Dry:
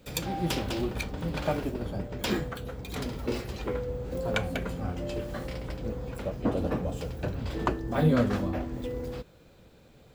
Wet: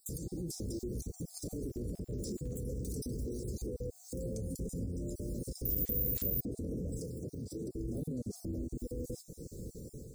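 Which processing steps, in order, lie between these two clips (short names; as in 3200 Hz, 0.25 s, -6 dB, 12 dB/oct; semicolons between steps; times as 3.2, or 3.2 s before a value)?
random spectral dropouts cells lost 26%; compressor 5:1, threshold -41 dBFS, peak gain reduction 18.5 dB; elliptic band-stop 440–5700 Hz, stop band 40 dB; bell 9000 Hz +10 dB 0.51 oct; 1.59–2.56 crackle 65/s -59 dBFS; AGC gain up to 7 dB; limiter -37 dBFS, peak gain reduction 14 dB; 5.65–6.41 careless resampling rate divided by 3×, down none, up zero stuff; 6.99–7.75 HPF 120 Hz 12 dB/oct; gain +6 dB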